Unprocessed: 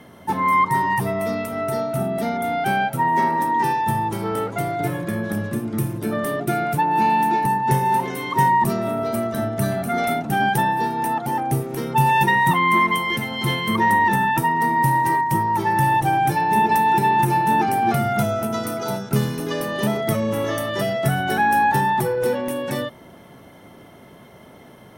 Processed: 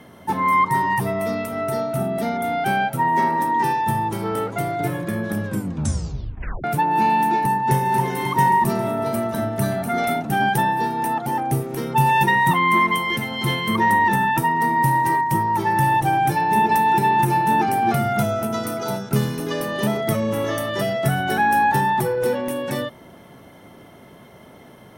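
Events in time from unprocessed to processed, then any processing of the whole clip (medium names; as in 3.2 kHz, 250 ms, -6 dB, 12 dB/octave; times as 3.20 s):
5.45 s: tape stop 1.19 s
7.56–8.05 s: echo throw 270 ms, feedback 75%, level -8 dB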